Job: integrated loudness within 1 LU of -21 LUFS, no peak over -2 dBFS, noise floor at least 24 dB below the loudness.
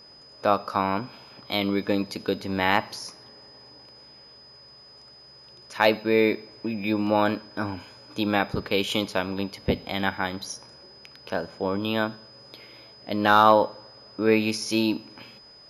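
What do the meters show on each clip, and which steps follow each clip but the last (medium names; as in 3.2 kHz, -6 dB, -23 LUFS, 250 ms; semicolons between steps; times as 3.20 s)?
steady tone 5 kHz; tone level -48 dBFS; loudness -25.0 LUFS; peak level -4.5 dBFS; loudness target -21.0 LUFS
-> band-stop 5 kHz, Q 30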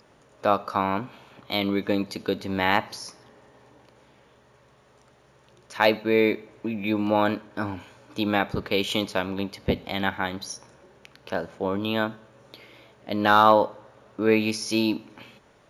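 steady tone not found; loudness -25.0 LUFS; peak level -4.0 dBFS; loudness target -21.0 LUFS
-> trim +4 dB; peak limiter -2 dBFS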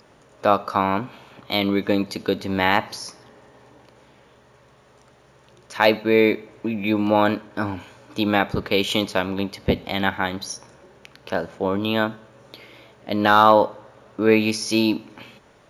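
loudness -21.5 LUFS; peak level -2.0 dBFS; noise floor -54 dBFS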